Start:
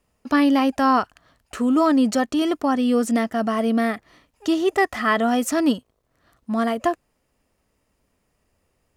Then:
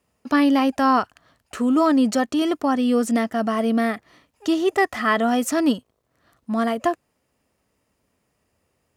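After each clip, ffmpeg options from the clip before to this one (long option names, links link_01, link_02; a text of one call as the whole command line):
ffmpeg -i in.wav -af "highpass=71" out.wav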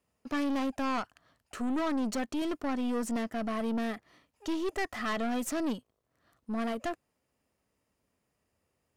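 ffmpeg -i in.wav -af "aeval=exprs='(tanh(11.2*val(0)+0.4)-tanh(0.4))/11.2':channel_layout=same,volume=-7dB" out.wav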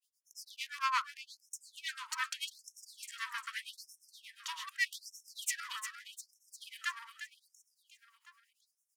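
ffmpeg -i in.wav -filter_complex "[0:a]acrossover=split=860[link_01][link_02];[link_01]aeval=exprs='val(0)*(1-1/2+1/2*cos(2*PI*8.8*n/s))':channel_layout=same[link_03];[link_02]aeval=exprs='val(0)*(1-1/2-1/2*cos(2*PI*8.8*n/s))':channel_layout=same[link_04];[link_03][link_04]amix=inputs=2:normalize=0,asplit=2[link_05][link_06];[link_06]aecho=0:1:352|704|1056|1408|1760|2112|2464:0.355|0.206|0.119|0.0692|0.0402|0.0233|0.0135[link_07];[link_05][link_07]amix=inputs=2:normalize=0,afftfilt=real='re*gte(b*sr/1024,870*pow(5400/870,0.5+0.5*sin(2*PI*0.82*pts/sr)))':imag='im*gte(b*sr/1024,870*pow(5400/870,0.5+0.5*sin(2*PI*0.82*pts/sr)))':win_size=1024:overlap=0.75,volume=8dB" out.wav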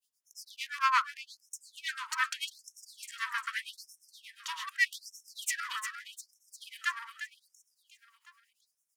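ffmpeg -i in.wav -af "adynamicequalizer=threshold=0.00355:dfrequency=1500:dqfactor=1.1:tfrequency=1500:tqfactor=1.1:attack=5:release=100:ratio=0.375:range=3:mode=boostabove:tftype=bell,volume=1.5dB" out.wav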